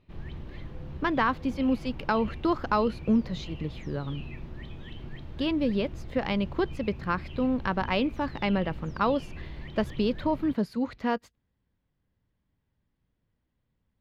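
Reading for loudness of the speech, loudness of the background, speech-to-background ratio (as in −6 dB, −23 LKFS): −29.0 LKFS, −42.5 LKFS, 13.5 dB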